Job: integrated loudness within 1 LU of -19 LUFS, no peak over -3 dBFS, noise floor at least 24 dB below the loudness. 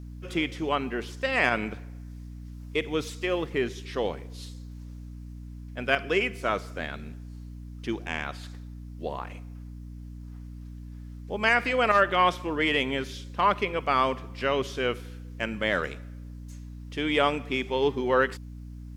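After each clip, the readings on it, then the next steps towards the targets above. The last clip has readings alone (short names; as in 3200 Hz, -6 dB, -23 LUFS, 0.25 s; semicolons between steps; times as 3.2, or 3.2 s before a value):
hum 60 Hz; harmonics up to 300 Hz; hum level -38 dBFS; loudness -27.5 LUFS; peak -7.0 dBFS; loudness target -19.0 LUFS
-> notches 60/120/180/240/300 Hz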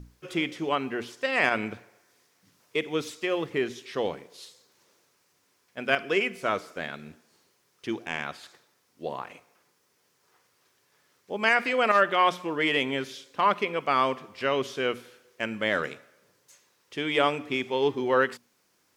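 hum none; loudness -27.5 LUFS; peak -7.0 dBFS; loudness target -19.0 LUFS
-> gain +8.5 dB; limiter -3 dBFS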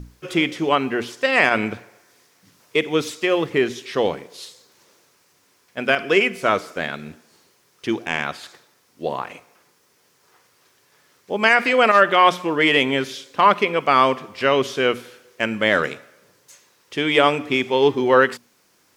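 loudness -19.5 LUFS; peak -3.0 dBFS; noise floor -61 dBFS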